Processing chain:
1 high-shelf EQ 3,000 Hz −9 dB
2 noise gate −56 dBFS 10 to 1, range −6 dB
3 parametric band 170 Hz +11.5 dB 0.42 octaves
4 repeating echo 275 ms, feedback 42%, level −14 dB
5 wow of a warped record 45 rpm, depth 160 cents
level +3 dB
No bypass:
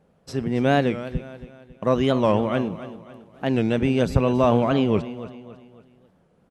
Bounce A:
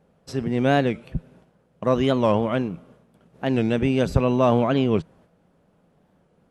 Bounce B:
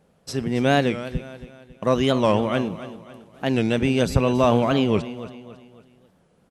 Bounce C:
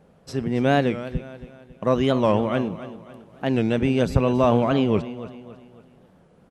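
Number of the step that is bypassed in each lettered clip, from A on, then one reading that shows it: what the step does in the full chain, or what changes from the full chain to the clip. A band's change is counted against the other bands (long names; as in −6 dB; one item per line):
4, change in momentary loudness spread −3 LU
1, 4 kHz band +4.5 dB
2, change in momentary loudness spread +1 LU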